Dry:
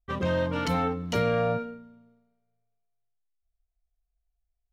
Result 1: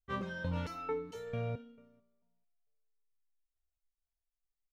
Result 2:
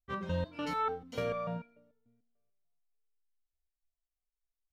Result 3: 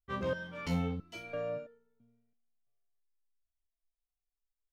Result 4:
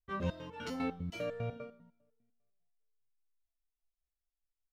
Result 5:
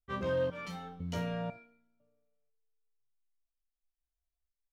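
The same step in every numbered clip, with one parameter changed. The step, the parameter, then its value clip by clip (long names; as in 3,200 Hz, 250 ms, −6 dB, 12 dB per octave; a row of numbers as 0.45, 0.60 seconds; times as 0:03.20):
step-sequenced resonator, speed: 4.5, 6.8, 3, 10, 2 Hertz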